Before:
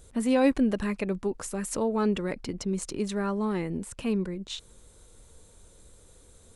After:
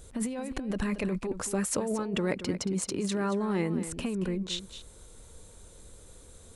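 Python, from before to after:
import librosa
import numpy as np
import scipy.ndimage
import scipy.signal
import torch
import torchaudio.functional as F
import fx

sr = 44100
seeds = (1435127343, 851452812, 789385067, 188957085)

y = fx.highpass(x, sr, hz=fx.line((1.42, 51.0), (3.86, 130.0)), slope=12, at=(1.42, 3.86), fade=0.02)
y = fx.over_compress(y, sr, threshold_db=-30.0, ratio=-1.0)
y = y + 10.0 ** (-12.0 / 20.0) * np.pad(y, (int(227 * sr / 1000.0), 0))[:len(y)]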